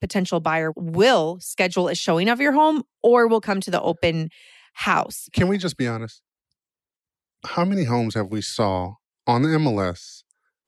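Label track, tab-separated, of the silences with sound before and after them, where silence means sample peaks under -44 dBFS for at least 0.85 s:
6.170000	7.430000	silence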